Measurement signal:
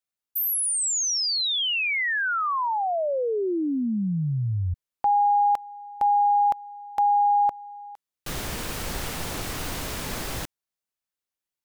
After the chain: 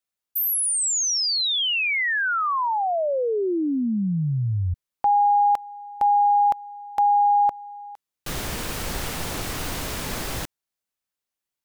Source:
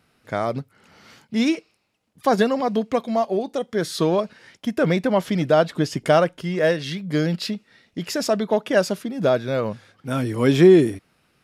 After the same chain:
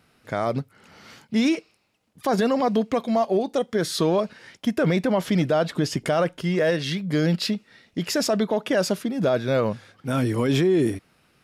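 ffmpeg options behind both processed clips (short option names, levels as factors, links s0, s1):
-af "alimiter=limit=0.178:level=0:latency=1:release=34,volume=1.26"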